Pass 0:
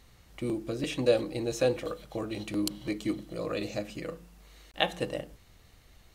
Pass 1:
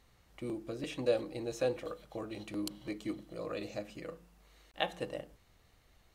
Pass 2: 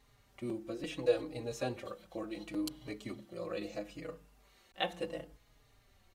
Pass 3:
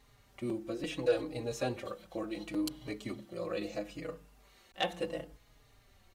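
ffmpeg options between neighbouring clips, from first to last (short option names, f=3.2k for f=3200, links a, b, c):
-af "equalizer=f=860:t=o:w=2.7:g=4,volume=-9dB"
-filter_complex "[0:a]asplit=2[a][b];[b]adelay=4.4,afreqshift=-0.72[c];[a][c]amix=inputs=2:normalize=1,volume=2.5dB"
-af "asoftclip=type=tanh:threshold=-22.5dB,volume=3dB"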